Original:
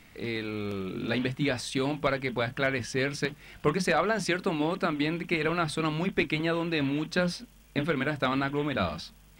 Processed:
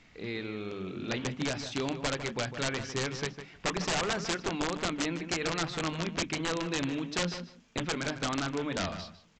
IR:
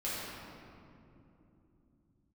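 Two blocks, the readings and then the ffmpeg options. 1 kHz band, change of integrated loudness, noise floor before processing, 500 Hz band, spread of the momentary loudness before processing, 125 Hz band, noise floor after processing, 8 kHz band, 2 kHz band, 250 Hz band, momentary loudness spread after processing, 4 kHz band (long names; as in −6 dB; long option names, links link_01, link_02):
−4.0 dB, −4.0 dB, −55 dBFS, −5.5 dB, 7 LU, −4.5 dB, −59 dBFS, +5.5 dB, −4.5 dB, −5.0 dB, 7 LU, +1.0 dB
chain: -filter_complex "[0:a]bandreject=frequency=50:width_type=h:width=6,bandreject=frequency=100:width_type=h:width=6,bandreject=frequency=150:width_type=h:width=6,bandreject=frequency=200:width_type=h:width=6,bandreject=frequency=250:width_type=h:width=6,aresample=16000,aeval=exprs='(mod(9.44*val(0)+1,2)-1)/9.44':channel_layout=same,aresample=44100,asplit=2[link_01][link_02];[link_02]adelay=153,lowpass=frequency=2700:poles=1,volume=-9.5dB,asplit=2[link_03][link_04];[link_04]adelay=153,lowpass=frequency=2700:poles=1,volume=0.15[link_05];[link_01][link_03][link_05]amix=inputs=3:normalize=0,volume=-4dB"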